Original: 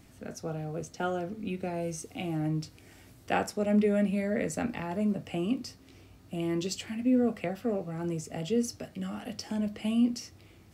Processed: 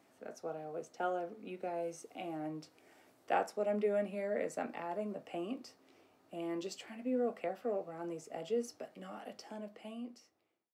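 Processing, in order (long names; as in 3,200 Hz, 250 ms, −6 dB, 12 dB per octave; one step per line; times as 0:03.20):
fade-out on the ending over 1.58 s
high-pass filter 620 Hz 12 dB per octave
tilt shelving filter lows +8.5 dB, about 1,200 Hz
level −4 dB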